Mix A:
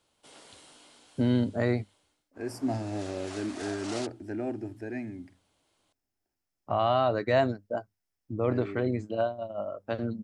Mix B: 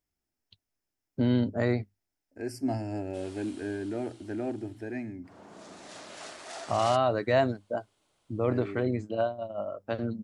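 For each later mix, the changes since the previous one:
background: entry +2.90 s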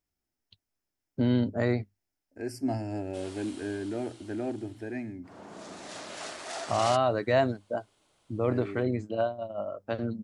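background +4.0 dB

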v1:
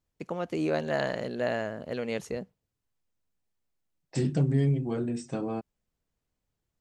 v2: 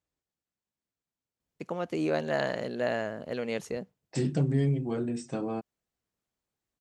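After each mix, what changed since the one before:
first voice: entry +1.40 s; master: add high-pass 100 Hz 6 dB/octave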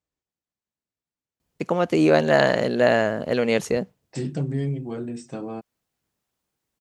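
first voice +11.5 dB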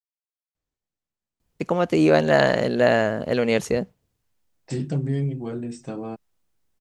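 second voice: entry +0.55 s; master: remove high-pass 100 Hz 6 dB/octave

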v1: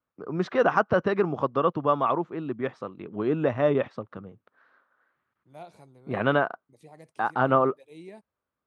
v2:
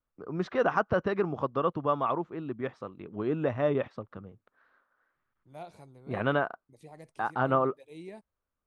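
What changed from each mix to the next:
first voice -4.5 dB; master: remove high-pass 110 Hz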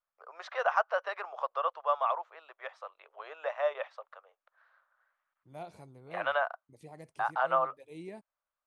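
first voice: add steep high-pass 570 Hz 48 dB/octave; second voice: add band-stop 3.8 kHz, Q 18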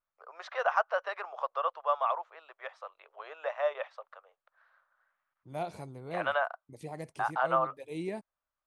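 second voice +8.0 dB

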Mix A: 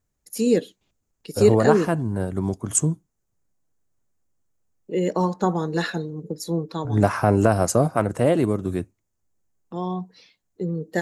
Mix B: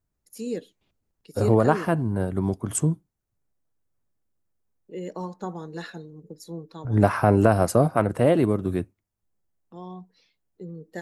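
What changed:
first voice -11.5 dB; second voice: add peaking EQ 6.8 kHz -11.5 dB 0.58 oct

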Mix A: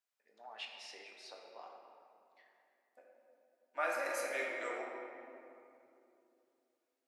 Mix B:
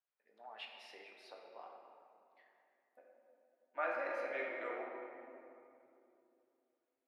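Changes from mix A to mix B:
first voice: remove distance through air 160 m; master: add distance through air 370 m

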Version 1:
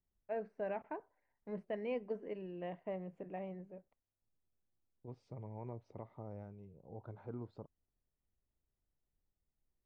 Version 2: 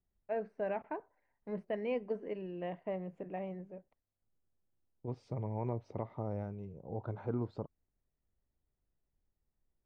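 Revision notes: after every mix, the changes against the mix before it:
first voice +3.5 dB; second voice +9.5 dB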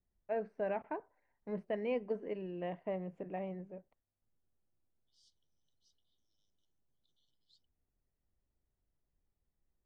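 second voice: add brick-wall FIR high-pass 2.9 kHz

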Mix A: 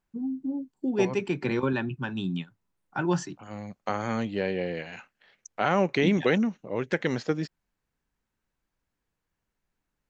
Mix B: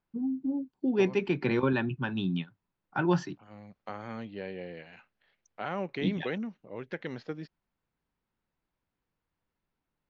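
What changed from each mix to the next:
second voice -10.5 dB; master: add low-pass 4.8 kHz 24 dB/octave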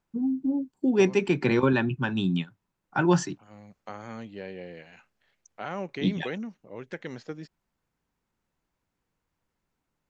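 first voice +4.5 dB; master: remove low-pass 4.8 kHz 24 dB/octave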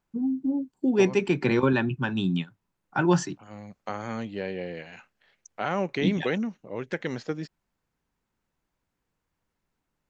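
second voice +6.5 dB

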